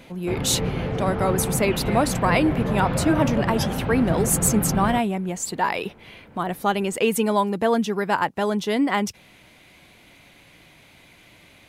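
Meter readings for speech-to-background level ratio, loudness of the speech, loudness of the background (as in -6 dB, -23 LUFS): 3.5 dB, -23.0 LUFS, -26.5 LUFS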